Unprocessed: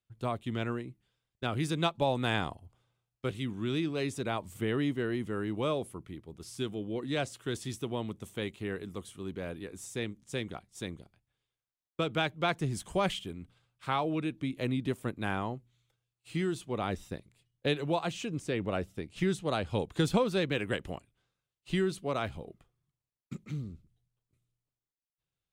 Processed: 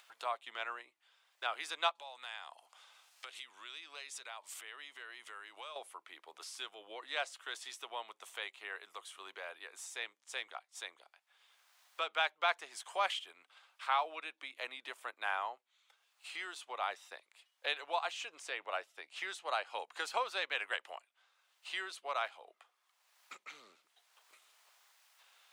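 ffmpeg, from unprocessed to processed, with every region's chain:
ffmpeg -i in.wav -filter_complex "[0:a]asettb=1/sr,asplit=3[link_01][link_02][link_03];[link_01]atrim=end=1.954[link_04];[link_02]atrim=start=1.95:end=5.76,asetpts=PTS-STARTPTS,afade=type=in:duration=0.004:curve=qsin,afade=type=out:start_time=3.806:duration=0.004:curve=qsin,acompressor=threshold=-45dB:ratio=4:attack=3.2:release=140:knee=1:detection=peak,equalizer=frequency=7200:width_type=o:width=2.9:gain=9.5[link_05];[link_03]atrim=start=5.756[link_06];[link_04][link_05]acrossfade=duration=0.004:curve1=hsin:curve2=qsin[link_07];[link_07][link_06]acrossfade=duration=0.004:curve1=qsin:curve2=hsin,asettb=1/sr,asplit=3[link_08][link_09][link_10];[link_08]atrim=end=19.424[link_11];[link_09]atrim=start=19.42:end=20.25,asetpts=PTS-STARTPTS,afade=type=in:duration=0.004:curve=qsin,afade=type=out:start_time=0.826:duration=0.004:curve=qsin,bandreject=frequency=3500:width=8.4,aeval=exprs='val(0)+0.00447*(sin(2*PI*50*n/s)+sin(2*PI*2*50*n/s)/2+sin(2*PI*3*50*n/s)/3+sin(2*PI*4*50*n/s)/4+sin(2*PI*5*50*n/s)/5)':channel_layout=same[link_12];[link_10]atrim=start=20.246[link_13];[link_11][link_12]acrossfade=duration=0.004:curve1=hsin:curve2=qsin[link_14];[link_14][link_13]acrossfade=duration=0.004:curve1=qsin:curve2=hsin,highpass=frequency=750:width=0.5412,highpass=frequency=750:width=1.3066,highshelf=frequency=6700:gain=-11,acompressor=mode=upward:threshold=-43dB:ratio=2.5,volume=1dB" out.wav

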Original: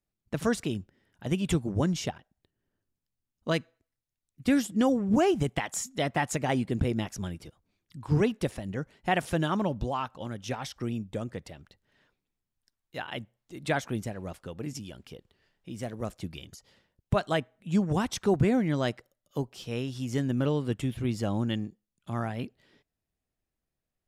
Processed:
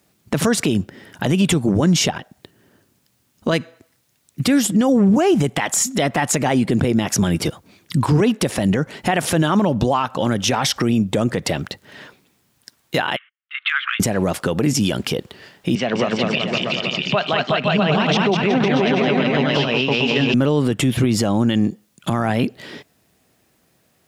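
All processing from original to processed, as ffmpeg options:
ffmpeg -i in.wav -filter_complex "[0:a]asettb=1/sr,asplit=3[link_01][link_02][link_03];[link_01]atrim=end=13.164[link_04];[link_02]atrim=start=13.16:end=14,asetpts=PTS-STARTPTS,afade=type=in:duration=0.004:curve=qsin,afade=type=out:start_time=0.836:duration=0.004:curve=qsin,agate=range=-31dB:threshold=-57dB:ratio=16:release=100:detection=peak,asuperpass=centerf=2000:order=12:qfactor=0.94,acompressor=threshold=-43dB:ratio=6:attack=3.2:release=140:knee=1:detection=peak[link_05];[link_03]atrim=start=13.996[link_06];[link_04][link_05]acrossfade=duration=0.004:curve1=hsin:curve2=qsin[link_07];[link_07][link_06]acrossfade=duration=0.004:curve1=qsin:curve2=hsin,asettb=1/sr,asplit=3[link_08][link_09][link_10];[link_08]atrim=end=15.754[link_11];[link_09]atrim=start=15.75:end=20.34,asetpts=PTS-STARTPTS,afade=type=in:duration=0.004:curve=qsin,afade=type=out:start_time=4.586:duration=0.004:curve=qsin,tremolo=f=4.7:d=0.71,highpass=frequency=160:width=0.5412,highpass=frequency=160:width=1.3066,equalizer=frequency=210:width_type=q:width=4:gain=-4,equalizer=frequency=310:width_type=q:width=4:gain=-10,equalizer=frequency=480:width_type=q:width=4:gain=-4,equalizer=frequency=2700:width_type=q:width=4:gain=9,lowpass=frequency=4600:width=0.5412,lowpass=frequency=4600:width=1.3066,aecho=1:1:200|370|514.5|637.3|741.7|830.5|905.9:0.794|0.631|0.501|0.398|0.316|0.251|0.2,atrim=end_sample=202419[link_12];[link_10]atrim=start=20.336[link_13];[link_11][link_12]acrossfade=duration=0.004:curve1=hsin:curve2=qsin[link_14];[link_14][link_13]acrossfade=duration=0.004:curve1=qsin:curve2=hsin,highpass=130,acompressor=threshold=-40dB:ratio=2.5,alimiter=level_in=35.5dB:limit=-1dB:release=50:level=0:latency=1,volume=-7.5dB" out.wav

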